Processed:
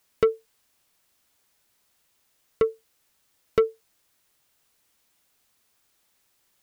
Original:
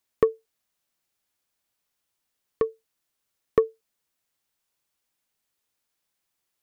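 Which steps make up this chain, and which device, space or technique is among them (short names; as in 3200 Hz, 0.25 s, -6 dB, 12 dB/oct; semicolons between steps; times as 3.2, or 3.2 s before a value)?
open-reel tape (soft clip -20.5 dBFS, distortion -8 dB; bell 67 Hz +4 dB; white noise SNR 38 dB); gain +6.5 dB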